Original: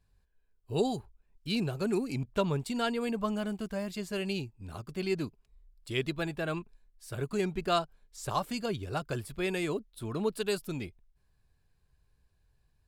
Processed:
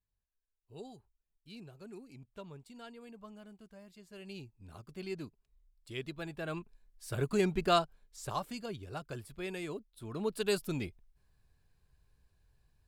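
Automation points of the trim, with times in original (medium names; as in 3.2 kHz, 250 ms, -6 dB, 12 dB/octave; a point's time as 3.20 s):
4.04 s -19 dB
4.49 s -9 dB
6.16 s -9 dB
7.08 s +1.5 dB
7.68 s +1.5 dB
8.65 s -8 dB
10.00 s -8 dB
10.53 s +0.5 dB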